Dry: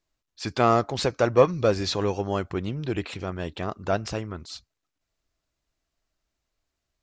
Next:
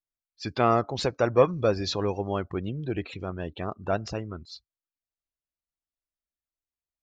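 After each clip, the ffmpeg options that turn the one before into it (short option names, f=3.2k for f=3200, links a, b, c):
-af "afftdn=nr=19:nf=-39,volume=-2dB"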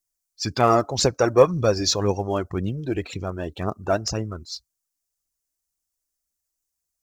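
-af "aphaser=in_gain=1:out_gain=1:delay=3.5:decay=0.37:speed=1.9:type=triangular,highshelf=f=4.6k:t=q:w=1.5:g=10,volume=4dB"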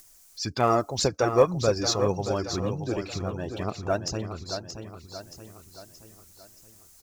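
-filter_complex "[0:a]acompressor=mode=upward:threshold=-26dB:ratio=2.5,asplit=2[a][b];[b]aecho=0:1:626|1252|1878|2504|3130:0.376|0.18|0.0866|0.0416|0.02[c];[a][c]amix=inputs=2:normalize=0,volume=-4.5dB"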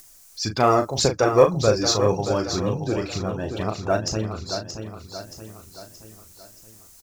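-filter_complex "[0:a]asplit=2[a][b];[b]adelay=37,volume=-7.5dB[c];[a][c]amix=inputs=2:normalize=0,volume=4dB"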